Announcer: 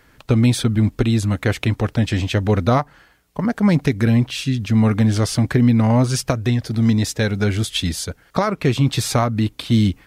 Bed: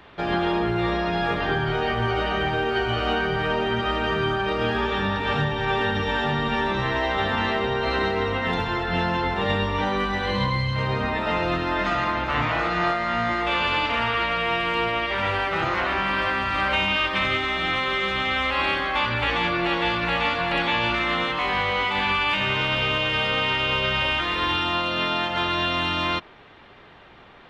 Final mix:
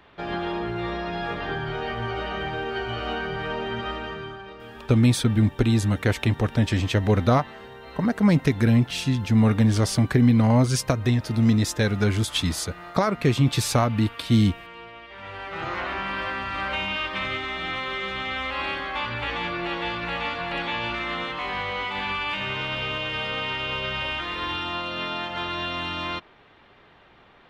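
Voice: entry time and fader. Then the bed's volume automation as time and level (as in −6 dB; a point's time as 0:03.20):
4.60 s, −3.0 dB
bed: 0:03.87 −5.5 dB
0:04.60 −18.5 dB
0:15.08 −18.5 dB
0:15.70 −5.5 dB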